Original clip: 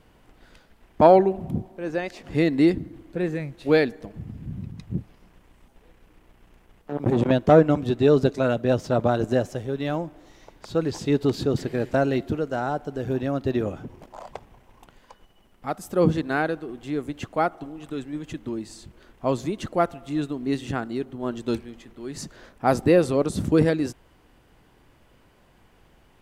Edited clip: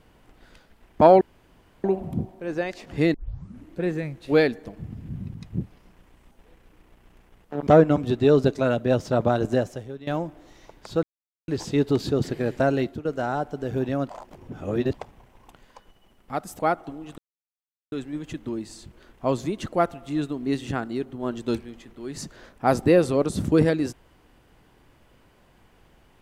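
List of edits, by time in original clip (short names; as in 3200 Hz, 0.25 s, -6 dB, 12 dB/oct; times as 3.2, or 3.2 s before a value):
1.21 insert room tone 0.63 s
2.51 tape start 0.56 s
7.04–7.46 cut
9.33–9.86 fade out, to -16 dB
10.82 insert silence 0.45 s
12.14–12.39 fade out, to -14.5 dB
13.43–14.28 reverse
15.93–17.33 cut
17.92 insert silence 0.74 s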